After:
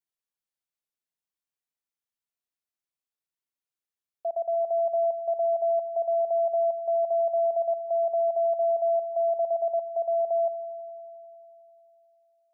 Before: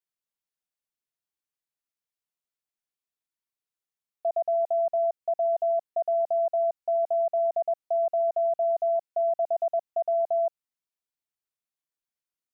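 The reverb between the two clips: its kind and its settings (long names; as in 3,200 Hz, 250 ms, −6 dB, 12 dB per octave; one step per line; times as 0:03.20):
spring reverb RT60 3.2 s, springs 40 ms, chirp 40 ms, DRR 15 dB
level −3 dB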